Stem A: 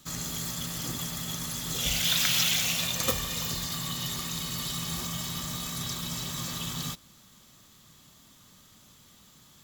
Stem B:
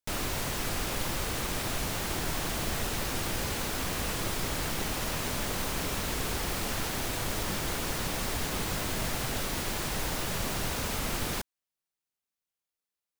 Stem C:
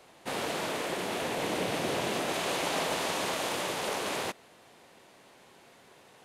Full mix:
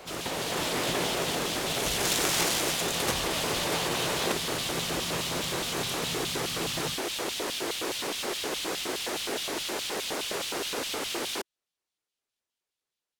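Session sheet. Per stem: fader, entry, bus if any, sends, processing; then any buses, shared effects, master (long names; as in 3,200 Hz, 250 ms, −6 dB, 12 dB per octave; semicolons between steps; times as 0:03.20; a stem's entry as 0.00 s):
−5.5 dB, 0.00 s, no send, phase distortion by the signal itself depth 0.37 ms
−4.0 dB, 0.00 s, no send, auto-filter high-pass square 4.8 Hz 370–3,200 Hz
+2.0 dB, 0.00 s, no send, compressor whose output falls as the input rises −38 dBFS, ratio −0.5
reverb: not used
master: automatic gain control gain up to 5 dB; linearly interpolated sample-rate reduction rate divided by 2×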